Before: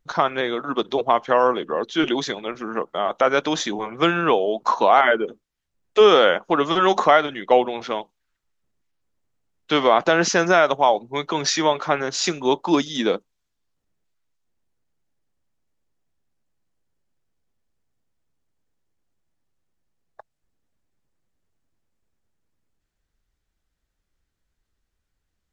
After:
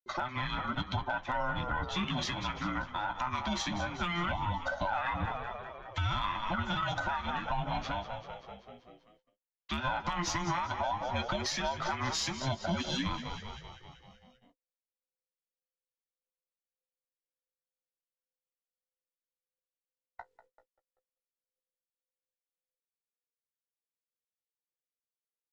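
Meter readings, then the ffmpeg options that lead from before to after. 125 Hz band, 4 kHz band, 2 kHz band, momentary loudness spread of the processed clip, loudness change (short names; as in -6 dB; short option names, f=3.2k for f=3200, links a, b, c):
-1.0 dB, -11.0 dB, -11.5 dB, 9 LU, -14.0 dB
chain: -filter_complex "[0:a]afftfilt=real='real(if(between(b,1,1008),(2*floor((b-1)/24)+1)*24-b,b),0)':imag='imag(if(between(b,1,1008),(2*floor((b-1)/24)+1)*24-b,b),0)*if(between(b,1,1008),-1,1)':win_size=2048:overlap=0.75,lowpass=f=3.1k:p=1,highshelf=f=2.1k:g=6.5,asplit=8[a][b][c][d][e][f][g][h];[b]adelay=193,afreqshift=-44,volume=-14dB[i];[c]adelay=386,afreqshift=-88,volume=-18.3dB[j];[d]adelay=579,afreqshift=-132,volume=-22.6dB[k];[e]adelay=772,afreqshift=-176,volume=-26.9dB[l];[f]adelay=965,afreqshift=-220,volume=-31.2dB[m];[g]adelay=1158,afreqshift=-264,volume=-35.5dB[n];[h]adelay=1351,afreqshift=-308,volume=-39.8dB[o];[a][i][j][k][l][m][n][o]amix=inputs=8:normalize=0,acrossover=split=210[p][q];[q]dynaudnorm=f=400:g=3:m=5.5dB[r];[p][r]amix=inputs=2:normalize=0,flanger=delay=7.3:depth=9.7:regen=-32:speed=0.17:shape=triangular,acompressor=threshold=-20dB:ratio=4,aeval=exprs='0.282*(cos(1*acos(clip(val(0)/0.282,-1,1)))-cos(1*PI/2))+0.00891*(cos(4*acos(clip(val(0)/0.282,-1,1)))-cos(4*PI/2))':c=same,agate=range=-38dB:threshold=-60dB:ratio=16:detection=peak,alimiter=limit=-18.5dB:level=0:latency=1:release=130,volume=-4.5dB"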